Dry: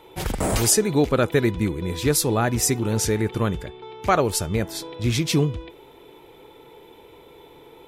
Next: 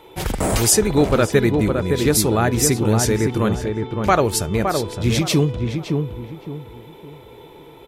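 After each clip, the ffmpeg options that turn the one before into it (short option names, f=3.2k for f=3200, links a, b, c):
-filter_complex "[0:a]asplit=2[a][b];[b]adelay=564,lowpass=f=1.3k:p=1,volume=-4dB,asplit=2[c][d];[d]adelay=564,lowpass=f=1.3k:p=1,volume=0.33,asplit=2[e][f];[f]adelay=564,lowpass=f=1.3k:p=1,volume=0.33,asplit=2[g][h];[h]adelay=564,lowpass=f=1.3k:p=1,volume=0.33[i];[a][c][e][g][i]amix=inputs=5:normalize=0,volume=3dB"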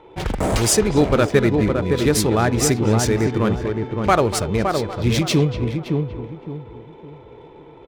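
-filter_complex "[0:a]adynamicsmooth=sensitivity=5:basefreq=2k,asplit=2[a][b];[b]adelay=240,highpass=300,lowpass=3.4k,asoftclip=type=hard:threshold=-11.5dB,volume=-11dB[c];[a][c]amix=inputs=2:normalize=0"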